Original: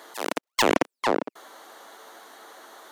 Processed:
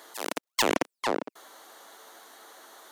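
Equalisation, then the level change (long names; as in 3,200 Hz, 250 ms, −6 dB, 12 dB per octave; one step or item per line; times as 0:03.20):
high-shelf EQ 3,900 Hz +6.5 dB
−5.0 dB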